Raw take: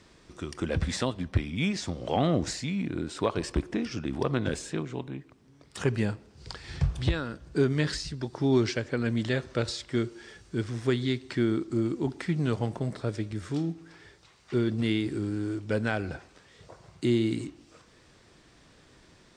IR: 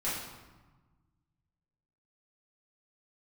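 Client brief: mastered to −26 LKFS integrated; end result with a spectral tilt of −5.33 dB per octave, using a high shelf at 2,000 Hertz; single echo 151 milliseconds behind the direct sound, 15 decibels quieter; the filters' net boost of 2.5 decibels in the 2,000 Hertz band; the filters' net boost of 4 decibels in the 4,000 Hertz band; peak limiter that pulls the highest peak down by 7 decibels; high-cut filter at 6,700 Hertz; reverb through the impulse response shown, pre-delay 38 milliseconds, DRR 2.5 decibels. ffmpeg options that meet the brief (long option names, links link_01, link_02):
-filter_complex "[0:a]lowpass=6700,highshelf=frequency=2000:gain=-5,equalizer=frequency=2000:width_type=o:gain=4,equalizer=frequency=4000:width_type=o:gain=9,alimiter=limit=-18dB:level=0:latency=1,aecho=1:1:151:0.178,asplit=2[link_01][link_02];[1:a]atrim=start_sample=2205,adelay=38[link_03];[link_02][link_03]afir=irnorm=-1:irlink=0,volume=-9dB[link_04];[link_01][link_04]amix=inputs=2:normalize=0,volume=3.5dB"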